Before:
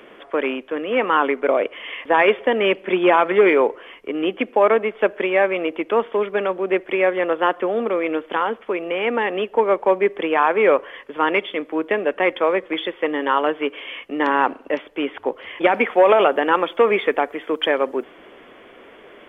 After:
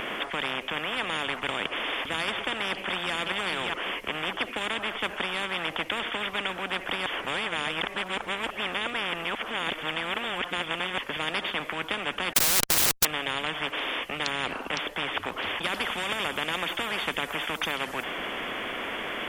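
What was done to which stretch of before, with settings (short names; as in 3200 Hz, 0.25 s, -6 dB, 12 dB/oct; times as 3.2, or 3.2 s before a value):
2.67–3.14 echo throw 0.59 s, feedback 10%, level -9.5 dB
7.06–10.98 reverse
12.33–13.05 Schmitt trigger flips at -32.5 dBFS
whole clip: high shelf 2200 Hz +7.5 dB; spectral compressor 10:1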